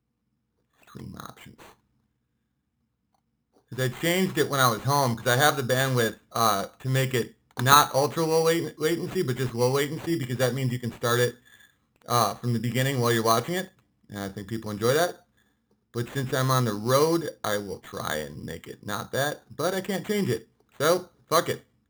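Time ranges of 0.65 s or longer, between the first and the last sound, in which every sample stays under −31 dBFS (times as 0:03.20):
0:01.30–0:03.72
0:11.31–0:12.09
0:15.11–0:15.95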